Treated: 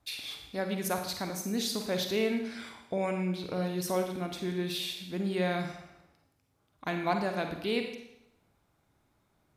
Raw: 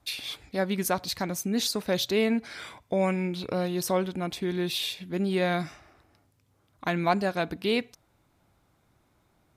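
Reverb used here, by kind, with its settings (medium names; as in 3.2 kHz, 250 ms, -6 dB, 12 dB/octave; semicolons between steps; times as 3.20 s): Schroeder reverb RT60 0.82 s, DRR 4.5 dB; trim -5.5 dB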